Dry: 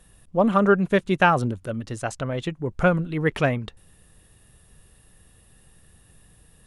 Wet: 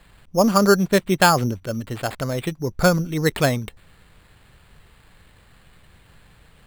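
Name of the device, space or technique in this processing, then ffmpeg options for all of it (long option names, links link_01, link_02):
crushed at another speed: -af "asetrate=22050,aresample=44100,acrusher=samples=15:mix=1:aa=0.000001,asetrate=88200,aresample=44100,volume=2.5dB"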